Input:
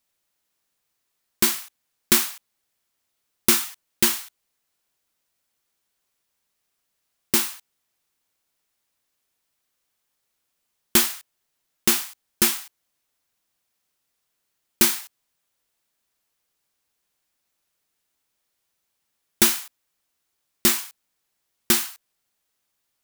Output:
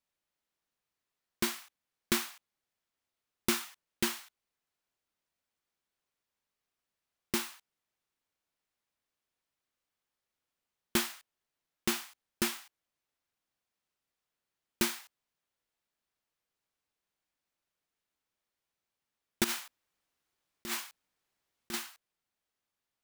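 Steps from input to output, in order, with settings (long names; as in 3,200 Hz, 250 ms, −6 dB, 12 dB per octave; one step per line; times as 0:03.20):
high-shelf EQ 5,300 Hz −10 dB
0:19.44–0:21.74: compressor whose output falls as the input rises −29 dBFS, ratio −1
level −7.5 dB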